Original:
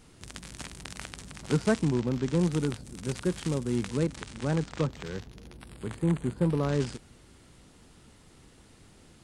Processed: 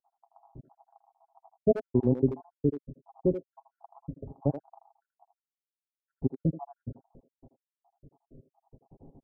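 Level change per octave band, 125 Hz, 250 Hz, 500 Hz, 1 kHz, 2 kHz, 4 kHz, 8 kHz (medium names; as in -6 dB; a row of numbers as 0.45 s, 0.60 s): -5.0 dB, -3.0 dB, 0.0 dB, -6.0 dB, under -20 dB, under -30 dB, under -35 dB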